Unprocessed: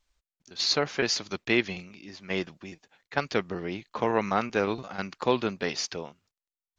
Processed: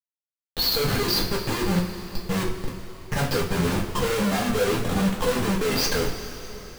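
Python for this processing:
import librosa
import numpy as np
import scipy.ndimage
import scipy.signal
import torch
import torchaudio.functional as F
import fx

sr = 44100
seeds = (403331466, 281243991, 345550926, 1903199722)

y = fx.spec_expand(x, sr, power=2.4)
y = fx.schmitt(y, sr, flips_db=-36.5)
y = fx.rev_double_slope(y, sr, seeds[0], early_s=0.28, late_s=3.9, knee_db=-18, drr_db=-5.0)
y = F.gain(torch.from_numpy(y), 2.5).numpy()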